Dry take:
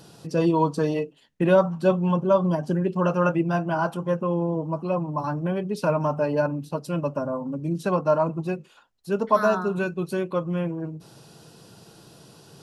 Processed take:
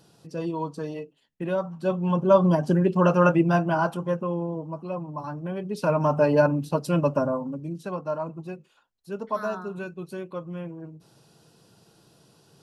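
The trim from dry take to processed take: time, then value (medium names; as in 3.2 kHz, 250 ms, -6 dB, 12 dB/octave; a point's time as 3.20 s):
1.66 s -9 dB
2.38 s +3 dB
3.53 s +3 dB
4.70 s -6.5 dB
5.44 s -6.5 dB
6.22 s +4 dB
7.23 s +4 dB
7.79 s -8.5 dB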